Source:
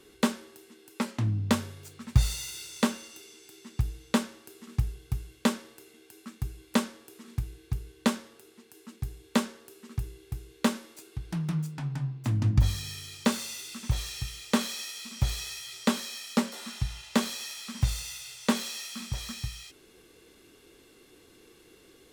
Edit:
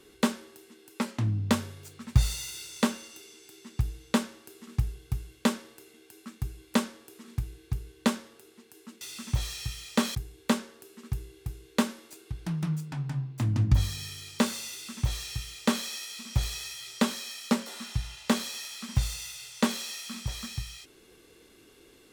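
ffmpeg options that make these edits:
ffmpeg -i in.wav -filter_complex "[0:a]asplit=3[link_01][link_02][link_03];[link_01]atrim=end=9.012[link_04];[link_02]atrim=start=13.568:end=14.712[link_05];[link_03]atrim=start=9.008[link_06];[link_04][link_05]acrossfade=duration=0.004:curve1=hsin:curve2=hsin[link_07];[link_07][link_06]acrossfade=duration=0.004:curve1=hsin:curve2=hsin" out.wav

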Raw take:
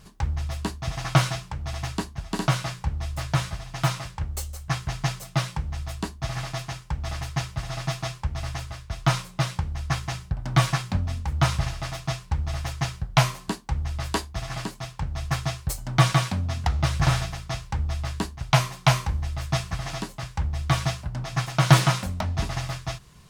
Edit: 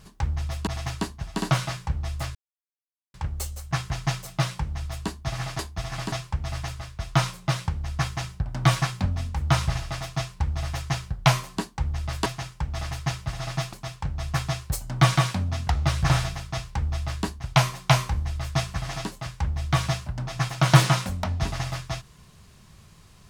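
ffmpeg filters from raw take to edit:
ffmpeg -i in.wav -filter_complex "[0:a]asplit=8[link_01][link_02][link_03][link_04][link_05][link_06][link_07][link_08];[link_01]atrim=end=0.672[link_09];[link_02]atrim=start=1.638:end=3.32,asetpts=PTS-STARTPTS,afade=type=out:start_time=1.678:duration=0.004:curve=hsin[link_10];[link_03]atrim=start=3.32:end=4.11,asetpts=PTS-STARTPTS,volume=0[link_11];[link_04]atrim=start=4.11:end=6.562,asetpts=PTS-STARTPTS,afade=type=in:duration=0.004:curve=hsin[link_12];[link_05]atrim=start=14.168:end=14.702[link_13];[link_06]atrim=start=8.028:end=14.172[link_14];[link_07]atrim=start=6.558:end=8.032[link_15];[link_08]atrim=start=14.698[link_16];[link_10][link_11][link_12]concat=n=3:v=0:a=1[link_17];[link_09][link_17]acrossfade=duration=0.004:curve1=hsin:curve2=hsin[link_18];[link_18][link_13]acrossfade=duration=0.004:curve1=hsin:curve2=hsin[link_19];[link_19][link_14]acrossfade=duration=0.004:curve1=hsin:curve2=hsin[link_20];[link_20][link_15]acrossfade=duration=0.004:curve1=hsin:curve2=hsin[link_21];[link_21][link_16]acrossfade=duration=0.004:curve1=hsin:curve2=hsin" out.wav

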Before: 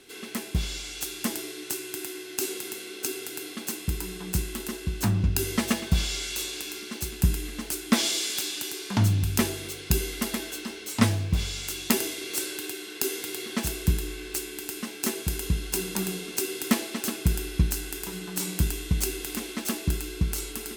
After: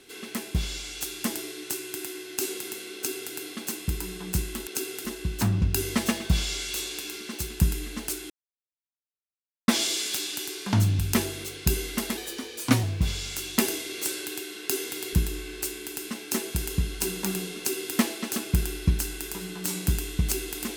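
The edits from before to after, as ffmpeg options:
ffmpeg -i in.wav -filter_complex "[0:a]asplit=7[link_01][link_02][link_03][link_04][link_05][link_06][link_07];[link_01]atrim=end=4.672[link_08];[link_02]atrim=start=2.948:end=3.332[link_09];[link_03]atrim=start=4.668:end=7.92,asetpts=PTS-STARTPTS,afade=type=out:start_time=3.248:duration=0.004:curve=hsin,apad=pad_dur=1.38[link_10];[link_04]atrim=start=7.92:end=10.414,asetpts=PTS-STARTPTS,afade=type=in:duration=0.004:curve=hsin[link_11];[link_05]atrim=start=10.41:end=11.15,asetpts=PTS-STARTPTS,asetrate=49392,aresample=44100,atrim=end_sample=29137,asetpts=PTS-STARTPTS[link_12];[link_06]atrim=start=11.146:end=13.452[link_13];[link_07]atrim=start=13.848[link_14];[link_08][link_09]acrossfade=duration=0.004:curve1=hsin:curve2=hsin[link_15];[link_10][link_11]concat=n=2:v=0:a=1[link_16];[link_15][link_16]acrossfade=duration=0.004:curve1=hsin:curve2=hsin[link_17];[link_17][link_12]acrossfade=duration=0.004:curve1=hsin:curve2=hsin[link_18];[link_18][link_13]acrossfade=duration=0.004:curve1=hsin:curve2=hsin[link_19];[link_19][link_14]acrossfade=duration=0.004:curve1=hsin:curve2=hsin" out.wav

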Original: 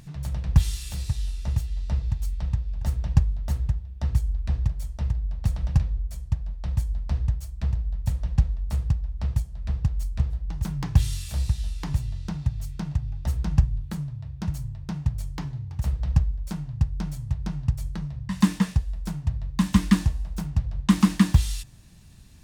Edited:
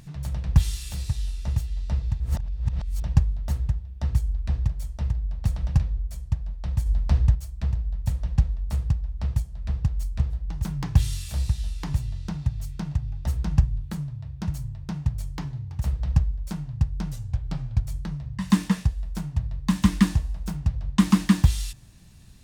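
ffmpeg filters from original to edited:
ffmpeg -i in.wav -filter_complex "[0:a]asplit=7[link_01][link_02][link_03][link_04][link_05][link_06][link_07];[link_01]atrim=end=2.202[link_08];[link_02]atrim=start=2.198:end=3.022,asetpts=PTS-STARTPTS,areverse[link_09];[link_03]atrim=start=3.018:end=6.862[link_10];[link_04]atrim=start=6.858:end=7.352,asetpts=PTS-STARTPTS,volume=5.5dB[link_11];[link_05]atrim=start=7.348:end=17.124[link_12];[link_06]atrim=start=17.12:end=17.76,asetpts=PTS-STARTPTS,asetrate=38367,aresample=44100,atrim=end_sample=32441,asetpts=PTS-STARTPTS[link_13];[link_07]atrim=start=17.756[link_14];[link_08][link_09]acrossfade=duration=0.004:curve1=hsin:curve2=hsin[link_15];[link_15][link_10]acrossfade=duration=0.004:curve1=hsin:curve2=hsin[link_16];[link_16][link_11]acrossfade=duration=0.004:curve1=hsin:curve2=hsin[link_17];[link_17][link_12]acrossfade=duration=0.004:curve1=hsin:curve2=hsin[link_18];[link_18][link_13]acrossfade=duration=0.004:curve1=hsin:curve2=hsin[link_19];[link_19][link_14]acrossfade=duration=0.004:curve1=hsin:curve2=hsin" out.wav

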